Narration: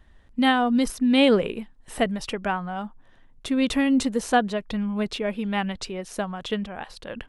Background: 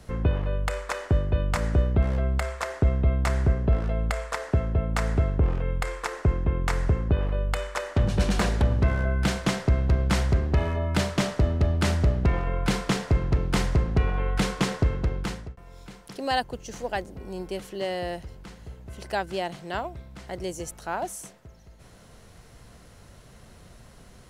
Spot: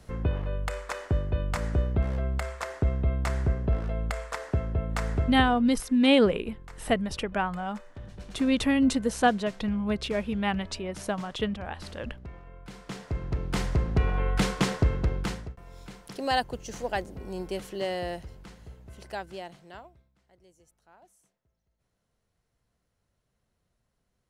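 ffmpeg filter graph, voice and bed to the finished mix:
ffmpeg -i stem1.wav -i stem2.wav -filter_complex "[0:a]adelay=4900,volume=-2dB[link_01];[1:a]volume=16dB,afade=type=out:start_time=5.22:duration=0.45:silence=0.149624,afade=type=in:start_time=12.72:duration=1.48:silence=0.1,afade=type=out:start_time=17.71:duration=2.42:silence=0.0446684[link_02];[link_01][link_02]amix=inputs=2:normalize=0" out.wav

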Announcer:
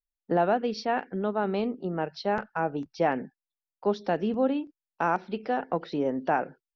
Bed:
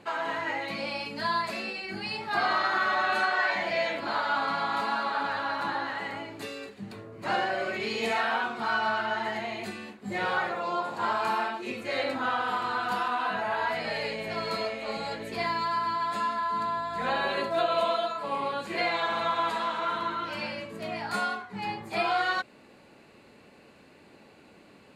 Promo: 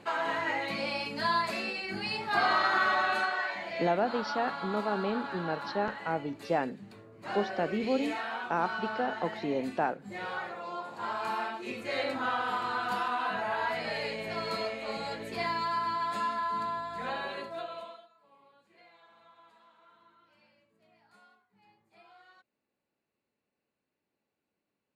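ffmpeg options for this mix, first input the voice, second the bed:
ffmpeg -i stem1.wav -i stem2.wav -filter_complex "[0:a]adelay=3500,volume=-4dB[link_01];[1:a]volume=6dB,afade=type=out:start_time=2.86:duration=0.67:silence=0.375837,afade=type=in:start_time=10.9:duration=0.93:silence=0.501187,afade=type=out:start_time=16.46:duration=1.61:silence=0.0354813[link_02];[link_01][link_02]amix=inputs=2:normalize=0" out.wav

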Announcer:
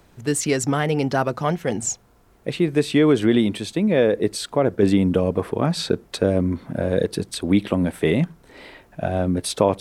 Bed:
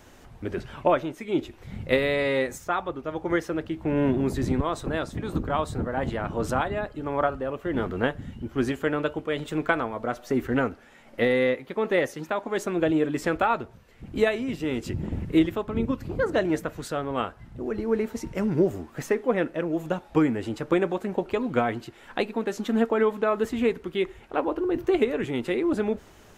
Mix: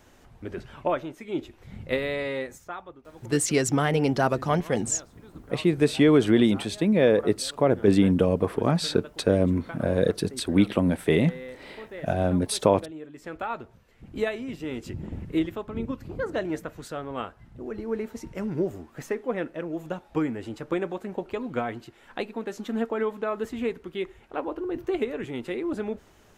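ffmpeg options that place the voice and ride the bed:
ffmpeg -i stem1.wav -i stem2.wav -filter_complex "[0:a]adelay=3050,volume=-2dB[link_01];[1:a]volume=7.5dB,afade=type=out:start_time=2.15:duration=0.9:silence=0.237137,afade=type=in:start_time=13.16:duration=0.56:silence=0.251189[link_02];[link_01][link_02]amix=inputs=2:normalize=0" out.wav

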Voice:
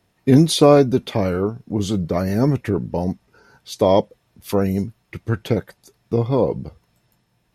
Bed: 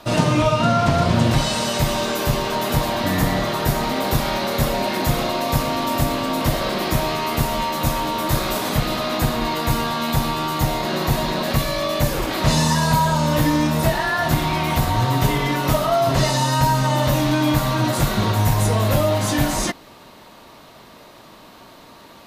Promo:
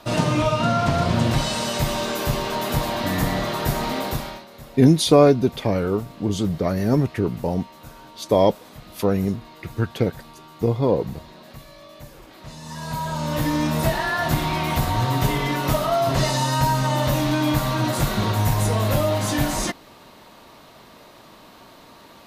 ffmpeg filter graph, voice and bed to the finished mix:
ffmpeg -i stem1.wav -i stem2.wav -filter_complex "[0:a]adelay=4500,volume=-1.5dB[link_01];[1:a]volume=16.5dB,afade=type=out:start_time=3.95:duration=0.5:silence=0.112202,afade=type=in:start_time=12.61:duration=1.13:silence=0.105925[link_02];[link_01][link_02]amix=inputs=2:normalize=0" out.wav

